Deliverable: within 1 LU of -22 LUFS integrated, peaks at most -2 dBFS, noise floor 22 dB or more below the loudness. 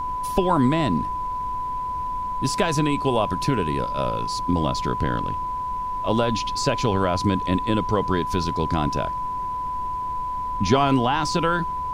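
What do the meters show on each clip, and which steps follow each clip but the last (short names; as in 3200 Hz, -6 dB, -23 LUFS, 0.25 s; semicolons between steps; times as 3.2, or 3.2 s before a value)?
steady tone 1000 Hz; tone level -25 dBFS; noise floor -28 dBFS; noise floor target -46 dBFS; loudness -23.5 LUFS; peak -4.5 dBFS; loudness target -22.0 LUFS
-> notch 1000 Hz, Q 30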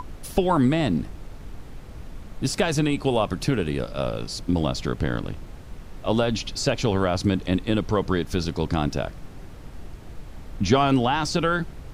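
steady tone none; noise floor -41 dBFS; noise floor target -47 dBFS
-> noise print and reduce 6 dB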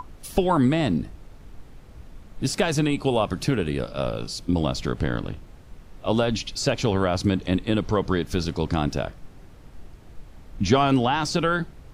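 noise floor -46 dBFS; noise floor target -47 dBFS
-> noise print and reduce 6 dB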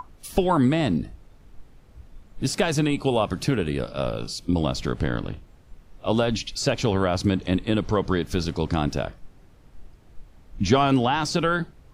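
noise floor -52 dBFS; loudness -24.5 LUFS; peak -5.0 dBFS; loudness target -22.0 LUFS
-> gain +2.5 dB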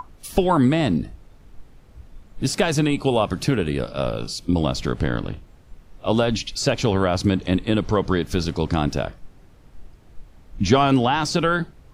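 loudness -22.0 LUFS; peak -2.5 dBFS; noise floor -49 dBFS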